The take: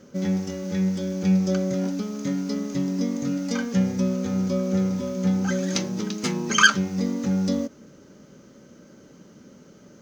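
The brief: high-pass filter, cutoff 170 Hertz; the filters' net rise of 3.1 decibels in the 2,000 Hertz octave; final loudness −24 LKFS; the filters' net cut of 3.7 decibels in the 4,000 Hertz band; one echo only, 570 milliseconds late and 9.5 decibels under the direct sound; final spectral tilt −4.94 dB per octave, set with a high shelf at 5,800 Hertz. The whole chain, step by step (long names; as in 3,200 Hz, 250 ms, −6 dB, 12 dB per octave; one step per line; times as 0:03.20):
high-pass filter 170 Hz
parametric band 2,000 Hz +6 dB
parametric band 4,000 Hz −6.5 dB
high-shelf EQ 5,800 Hz −4.5 dB
single-tap delay 570 ms −9.5 dB
level +0.5 dB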